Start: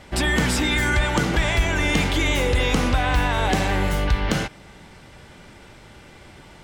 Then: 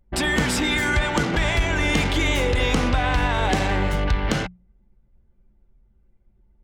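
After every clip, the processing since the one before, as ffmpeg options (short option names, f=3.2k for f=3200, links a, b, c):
-af "anlmdn=100,bandreject=f=60:t=h:w=6,bandreject=f=120:t=h:w=6,bandreject=f=180:t=h:w=6"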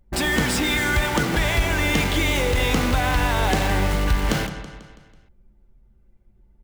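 -filter_complex "[0:a]aecho=1:1:164|328|492|656|820:0.188|0.0942|0.0471|0.0235|0.0118,asplit=2[a][b];[b]aeval=exprs='(mod(17.8*val(0)+1,2)-1)/17.8':c=same,volume=-6.5dB[c];[a][c]amix=inputs=2:normalize=0"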